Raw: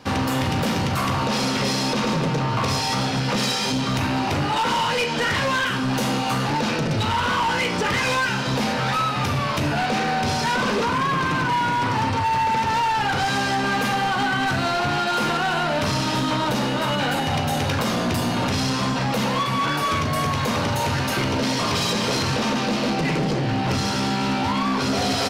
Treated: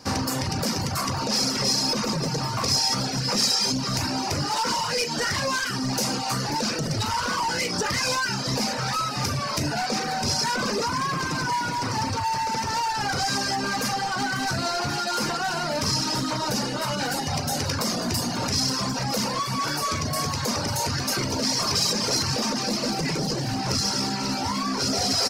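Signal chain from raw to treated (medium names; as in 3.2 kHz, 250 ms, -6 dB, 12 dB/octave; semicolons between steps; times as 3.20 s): resonant high shelf 4.1 kHz +6 dB, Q 3; feedback echo behind a high-pass 541 ms, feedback 82%, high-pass 2 kHz, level -12 dB; reverb removal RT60 0.95 s; trim -2.5 dB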